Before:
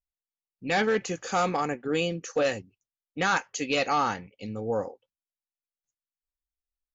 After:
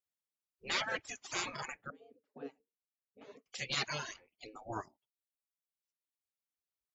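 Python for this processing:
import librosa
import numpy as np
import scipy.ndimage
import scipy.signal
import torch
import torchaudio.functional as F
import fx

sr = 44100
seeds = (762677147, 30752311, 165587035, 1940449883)

y = fx.spec_gate(x, sr, threshold_db=-15, keep='weak')
y = fx.double_bandpass(y, sr, hz=350.0, octaves=0.71, at=(1.9, 3.46))
y = fx.dereverb_blind(y, sr, rt60_s=1.3)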